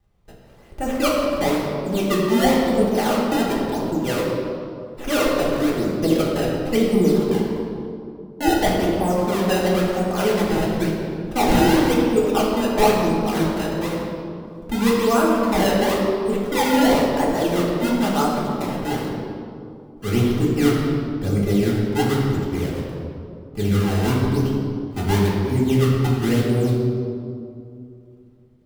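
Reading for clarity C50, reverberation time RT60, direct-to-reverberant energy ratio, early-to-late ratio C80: 0.0 dB, 2.5 s, -6.0 dB, 1.5 dB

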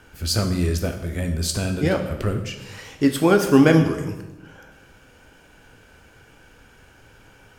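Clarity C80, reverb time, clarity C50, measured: 11.0 dB, 1.0 s, 8.5 dB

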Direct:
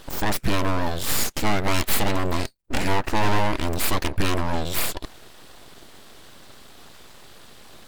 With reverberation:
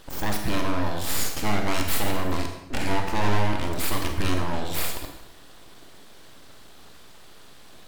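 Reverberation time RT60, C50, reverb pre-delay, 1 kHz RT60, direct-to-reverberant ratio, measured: 0.90 s, 5.5 dB, 29 ms, 0.90 s, 3.5 dB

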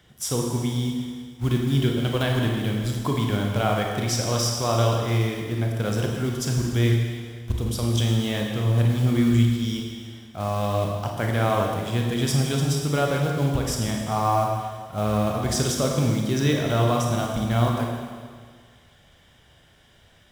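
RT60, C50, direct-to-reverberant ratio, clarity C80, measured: 1.8 s, 1.5 dB, 0.0 dB, 3.5 dB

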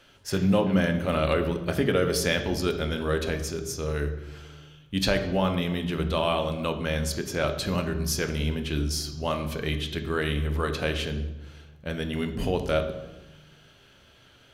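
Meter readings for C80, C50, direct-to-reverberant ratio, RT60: 11.5 dB, 9.5 dB, 6.5 dB, 1.1 s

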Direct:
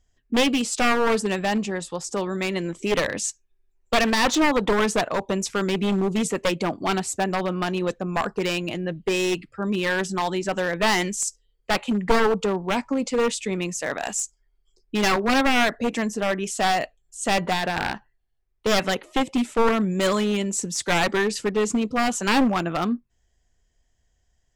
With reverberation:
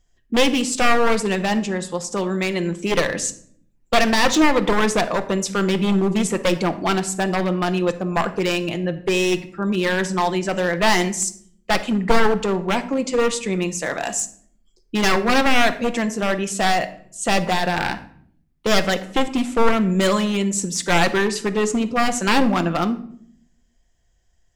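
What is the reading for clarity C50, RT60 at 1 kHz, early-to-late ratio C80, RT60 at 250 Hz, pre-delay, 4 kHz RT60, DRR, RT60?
14.5 dB, 0.55 s, 17.0 dB, 0.90 s, 6 ms, 0.40 s, 8.5 dB, 0.60 s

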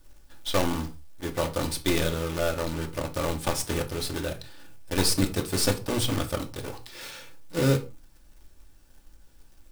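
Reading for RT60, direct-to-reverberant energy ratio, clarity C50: not exponential, 3.5 dB, 15.5 dB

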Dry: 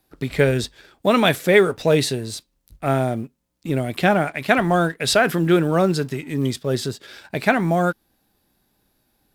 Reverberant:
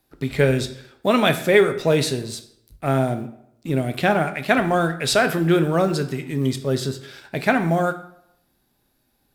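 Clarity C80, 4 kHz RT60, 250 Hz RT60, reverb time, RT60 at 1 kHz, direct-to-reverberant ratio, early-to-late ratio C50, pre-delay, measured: 15.0 dB, 0.55 s, 0.70 s, 0.75 s, 0.75 s, 9.0 dB, 12.5 dB, 7 ms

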